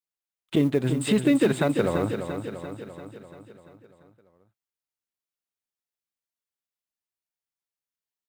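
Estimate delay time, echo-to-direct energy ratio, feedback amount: 342 ms, −6.0 dB, 58%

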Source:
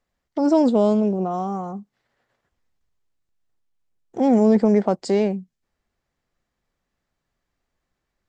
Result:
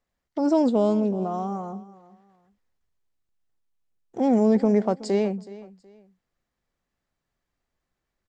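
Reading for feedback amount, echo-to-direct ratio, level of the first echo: 28%, −18.0 dB, −18.5 dB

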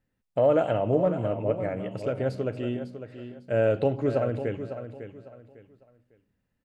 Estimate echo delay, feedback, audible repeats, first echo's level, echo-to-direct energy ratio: 552 ms, 28%, 3, −10.5 dB, −10.0 dB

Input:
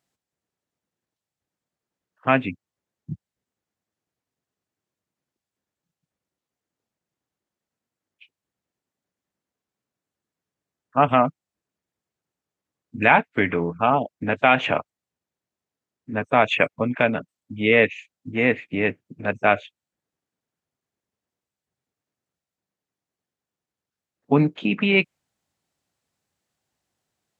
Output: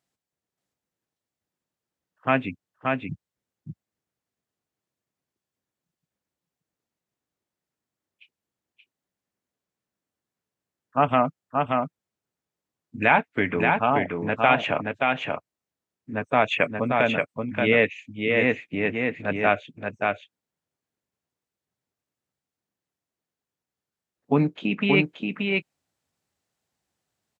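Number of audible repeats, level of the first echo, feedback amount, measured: 1, −3.5 dB, repeats not evenly spaced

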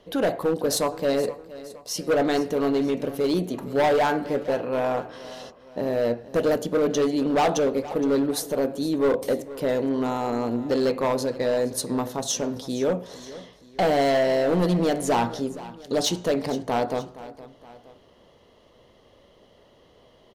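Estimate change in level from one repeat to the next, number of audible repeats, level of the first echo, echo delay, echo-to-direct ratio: −6.0 dB, 2, −17.0 dB, 468 ms, −16.0 dB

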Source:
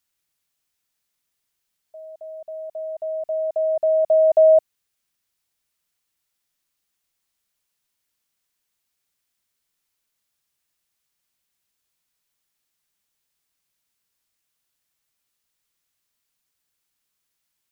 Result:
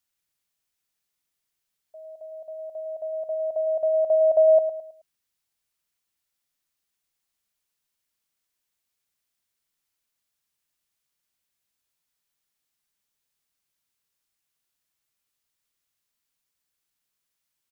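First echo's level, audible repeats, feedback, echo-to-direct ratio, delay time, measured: −10.5 dB, 3, 36%, −10.0 dB, 107 ms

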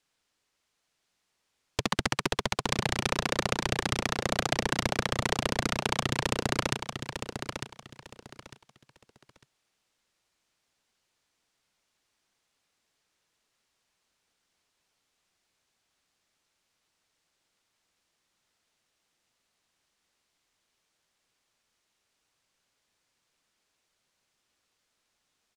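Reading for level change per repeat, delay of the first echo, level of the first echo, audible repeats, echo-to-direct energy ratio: −12.0 dB, 901 ms, −7.5 dB, 3, −7.0 dB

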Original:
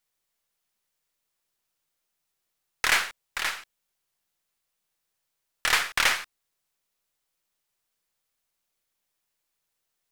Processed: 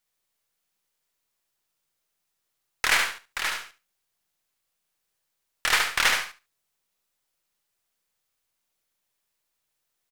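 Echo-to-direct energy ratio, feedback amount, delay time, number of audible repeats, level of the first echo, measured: −5.0 dB, 16%, 72 ms, 2, −5.0 dB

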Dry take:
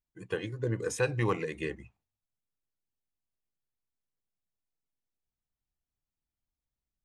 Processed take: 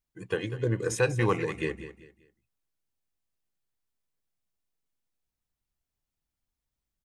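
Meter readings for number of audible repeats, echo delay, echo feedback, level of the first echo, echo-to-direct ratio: 3, 195 ms, 31%, −13.0 dB, −12.5 dB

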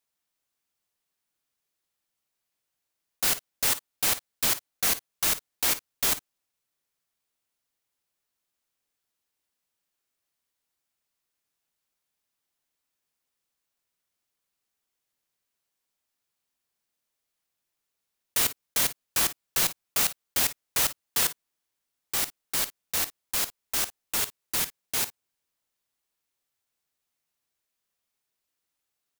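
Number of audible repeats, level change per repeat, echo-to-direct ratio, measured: 1, repeats not evenly spaced, −14.5 dB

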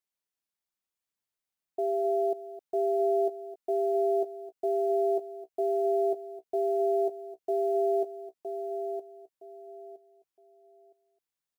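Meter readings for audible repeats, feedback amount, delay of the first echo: 6, repeats not evenly spaced, 261 ms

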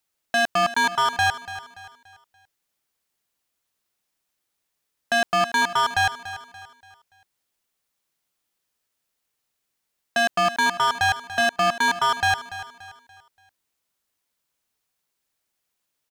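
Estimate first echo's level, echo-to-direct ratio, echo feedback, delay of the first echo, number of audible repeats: −14.0 dB, −13.5 dB, 39%, 288 ms, 3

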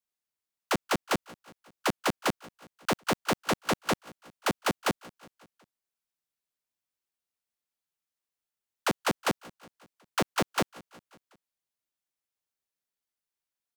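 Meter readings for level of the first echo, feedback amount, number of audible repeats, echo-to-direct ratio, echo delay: −22.0 dB, 59%, 3, −20.0 dB, 183 ms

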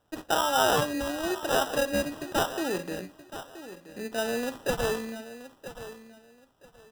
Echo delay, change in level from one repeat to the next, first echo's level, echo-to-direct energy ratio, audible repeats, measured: 975 ms, −13.0 dB, −13.5 dB, −13.5 dB, 2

